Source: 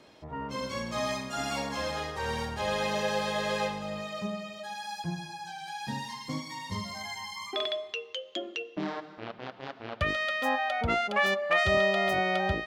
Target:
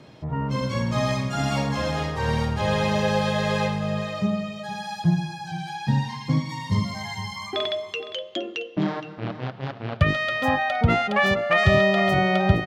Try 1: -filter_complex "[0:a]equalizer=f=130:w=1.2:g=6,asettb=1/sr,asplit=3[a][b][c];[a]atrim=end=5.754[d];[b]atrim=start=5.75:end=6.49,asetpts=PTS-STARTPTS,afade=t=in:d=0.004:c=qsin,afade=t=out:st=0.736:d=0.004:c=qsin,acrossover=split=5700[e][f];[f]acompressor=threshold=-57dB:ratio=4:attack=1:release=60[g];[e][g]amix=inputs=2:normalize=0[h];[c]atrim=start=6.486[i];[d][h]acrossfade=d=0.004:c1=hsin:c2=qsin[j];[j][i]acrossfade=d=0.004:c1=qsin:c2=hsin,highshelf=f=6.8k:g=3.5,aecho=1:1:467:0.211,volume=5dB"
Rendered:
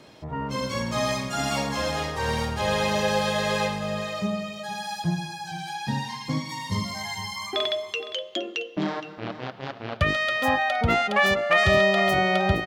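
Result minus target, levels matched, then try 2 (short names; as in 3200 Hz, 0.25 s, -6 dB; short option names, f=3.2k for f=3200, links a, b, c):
8000 Hz band +6.0 dB; 125 Hz band -5.5 dB
-filter_complex "[0:a]equalizer=f=130:w=1.2:g=15,asettb=1/sr,asplit=3[a][b][c];[a]atrim=end=5.754[d];[b]atrim=start=5.75:end=6.49,asetpts=PTS-STARTPTS,afade=t=in:d=0.004:c=qsin,afade=t=out:st=0.736:d=0.004:c=qsin,acrossover=split=5700[e][f];[f]acompressor=threshold=-57dB:ratio=4:attack=1:release=60[g];[e][g]amix=inputs=2:normalize=0[h];[c]atrim=start=6.486[i];[d][h]acrossfade=d=0.004:c1=hsin:c2=qsin[j];[j][i]acrossfade=d=0.004:c1=qsin:c2=hsin,highshelf=f=6.8k:g=-6.5,aecho=1:1:467:0.211,volume=5dB"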